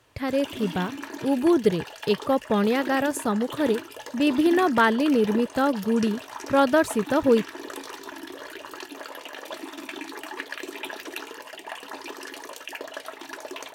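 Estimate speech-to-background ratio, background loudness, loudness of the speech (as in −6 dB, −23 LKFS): 13.5 dB, −37.0 LKFS, −23.5 LKFS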